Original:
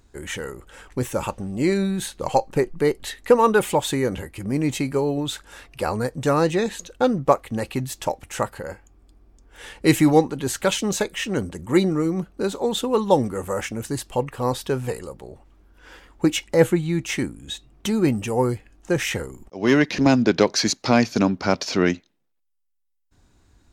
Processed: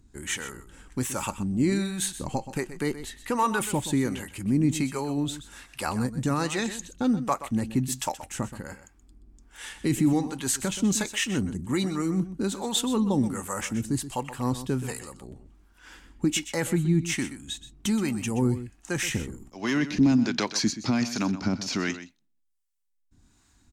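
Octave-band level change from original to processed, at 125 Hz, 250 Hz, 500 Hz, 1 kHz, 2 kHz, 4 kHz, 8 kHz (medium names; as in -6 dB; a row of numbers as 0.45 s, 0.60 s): -2.5 dB, -3.0 dB, -12.0 dB, -7.5 dB, -5.0 dB, -3.5 dB, 0.0 dB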